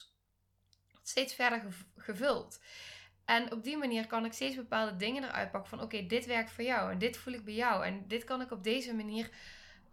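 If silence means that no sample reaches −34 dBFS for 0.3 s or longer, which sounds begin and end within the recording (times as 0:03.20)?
0:01.08–0:01.59
0:02.09–0:02.40
0:03.29–0:09.25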